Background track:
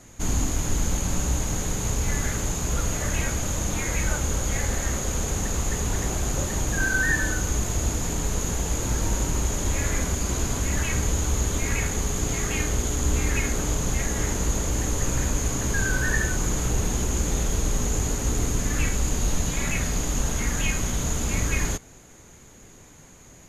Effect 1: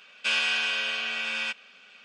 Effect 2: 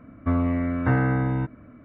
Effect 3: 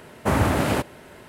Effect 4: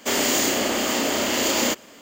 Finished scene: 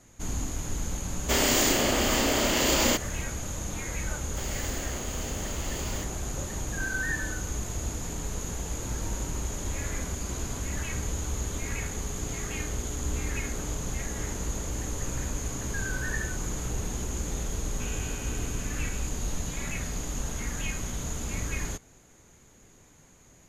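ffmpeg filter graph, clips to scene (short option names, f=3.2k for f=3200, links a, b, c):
-filter_complex "[4:a]asplit=2[a][b];[0:a]volume=-7.5dB[c];[b]acrusher=bits=5:mix=0:aa=0.000001[d];[1:a]lowpass=2.8k[e];[a]atrim=end=2.01,asetpts=PTS-STARTPTS,volume=-2.5dB,afade=t=in:d=0.004:c=hsin,afade=t=out:st=2.006:d=0.004:c=hsin,adelay=1230[f];[d]atrim=end=2.01,asetpts=PTS-STARTPTS,volume=-17.5dB,afade=t=in:d=0.004:c=hsin,afade=t=out:st=2.006:d=0.004:c=hsin,adelay=4300[g];[e]atrim=end=2.04,asetpts=PTS-STARTPTS,volume=-17dB,afade=t=in:d=0.004:c=hsin,afade=t=out:st=2.036:d=0.004:c=hsin,adelay=17550[h];[c][f][g][h]amix=inputs=4:normalize=0"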